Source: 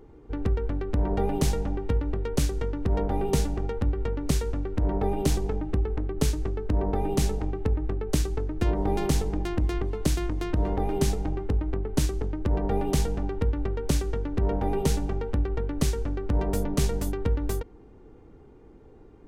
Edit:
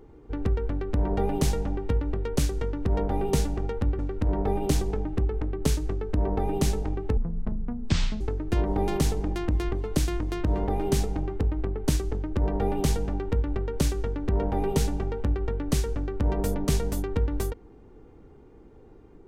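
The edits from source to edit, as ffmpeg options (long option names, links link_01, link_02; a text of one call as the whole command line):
ffmpeg -i in.wav -filter_complex "[0:a]asplit=4[link_01][link_02][link_03][link_04];[link_01]atrim=end=3.992[link_05];[link_02]atrim=start=4.548:end=7.734[link_06];[link_03]atrim=start=7.73:end=8.3,asetpts=PTS-STARTPTS,asetrate=24255,aresample=44100[link_07];[link_04]atrim=start=8.296[link_08];[link_05][link_06]acrossfade=duration=0.004:curve1=hsin:curve2=hsin[link_09];[link_09][link_07]acrossfade=duration=0.004:curve1=hsin:curve2=hsin[link_10];[link_10][link_08]acrossfade=duration=0.004:curve1=hsin:curve2=hsin" out.wav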